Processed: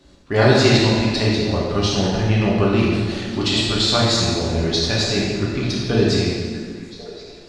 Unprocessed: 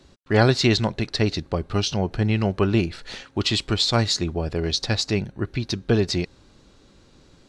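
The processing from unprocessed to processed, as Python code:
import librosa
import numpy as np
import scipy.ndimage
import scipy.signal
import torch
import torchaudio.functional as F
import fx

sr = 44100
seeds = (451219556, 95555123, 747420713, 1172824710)

y = fx.echo_stepped(x, sr, ms=546, hz=230.0, octaves=1.4, feedback_pct=70, wet_db=-10.5)
y = fx.rev_plate(y, sr, seeds[0], rt60_s=1.7, hf_ratio=0.85, predelay_ms=0, drr_db=-5.5)
y = F.gain(torch.from_numpy(y), -1.5).numpy()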